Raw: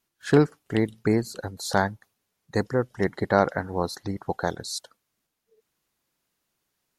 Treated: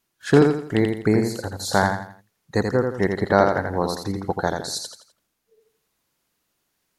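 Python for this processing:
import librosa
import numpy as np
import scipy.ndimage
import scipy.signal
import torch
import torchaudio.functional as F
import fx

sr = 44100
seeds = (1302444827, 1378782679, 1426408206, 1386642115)

y = fx.echo_feedback(x, sr, ms=84, feedback_pct=36, wet_db=-5.0)
y = F.gain(torch.from_numpy(y), 3.0).numpy()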